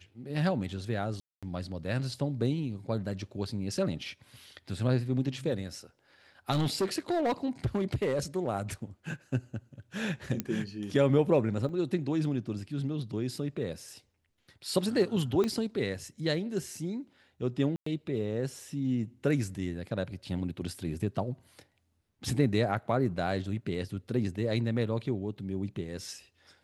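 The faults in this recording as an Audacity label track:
1.200000	1.430000	drop-out 226 ms
6.510000	8.470000	clipping −24 dBFS
10.400000	10.400000	click −16 dBFS
11.690000	11.690000	drop-out 2.5 ms
15.440000	15.440000	click −18 dBFS
17.760000	17.860000	drop-out 104 ms

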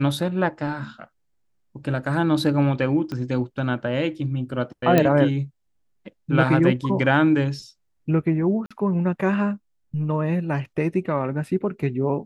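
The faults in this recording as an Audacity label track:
3.120000	3.120000	click −19 dBFS
4.980000	4.980000	click −5 dBFS
8.660000	8.710000	drop-out 46 ms

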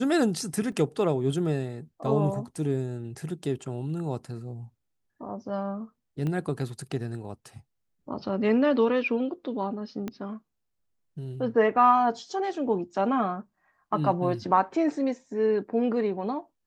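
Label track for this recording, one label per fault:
0.720000	0.720000	drop-out 3.2 ms
6.270000	6.270000	click −21 dBFS
10.080000	10.080000	click −20 dBFS

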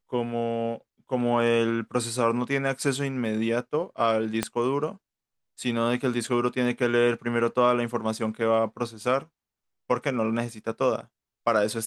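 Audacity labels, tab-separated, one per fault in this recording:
4.430000	4.430000	click −10 dBFS

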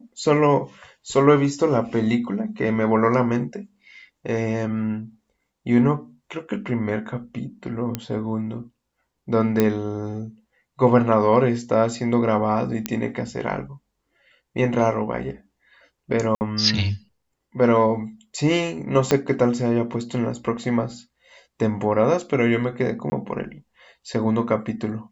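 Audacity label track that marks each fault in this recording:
7.950000	7.950000	click −10 dBFS
9.600000	9.600000	click −6 dBFS
12.860000	12.860000	click −7 dBFS
16.350000	16.410000	drop-out 59 ms
19.110000	19.110000	click −4 dBFS
23.100000	23.120000	drop-out 20 ms

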